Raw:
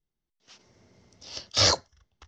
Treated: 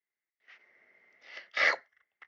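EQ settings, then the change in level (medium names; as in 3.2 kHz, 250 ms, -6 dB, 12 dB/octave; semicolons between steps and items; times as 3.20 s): high-pass 550 Hz 12 dB/octave; resonant low-pass 2 kHz, resonance Q 7.7; peaking EQ 960 Hz -7 dB 0.37 oct; -5.0 dB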